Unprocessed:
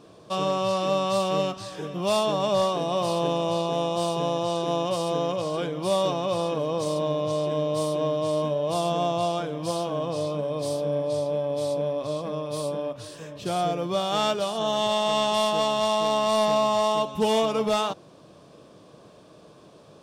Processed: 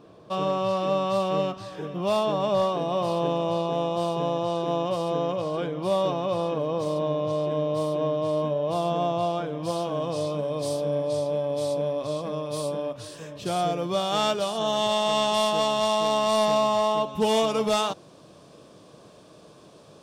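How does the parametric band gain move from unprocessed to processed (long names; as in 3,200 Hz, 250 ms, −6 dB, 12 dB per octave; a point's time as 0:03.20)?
parametric band 8,500 Hz 2.1 octaves
0:09.41 −10 dB
0:10.07 +1 dB
0:16.56 +1 dB
0:17.00 −7.5 dB
0:17.42 +4 dB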